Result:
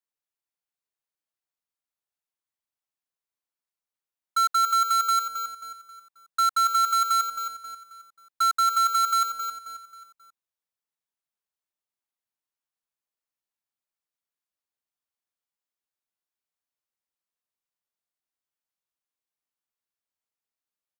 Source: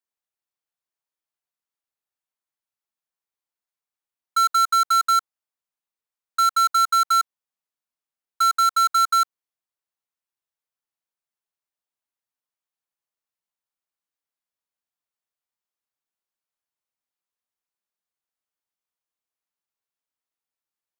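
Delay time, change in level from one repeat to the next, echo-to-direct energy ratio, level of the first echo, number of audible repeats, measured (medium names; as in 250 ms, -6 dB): 268 ms, -8.0 dB, -8.5 dB, -9.0 dB, 4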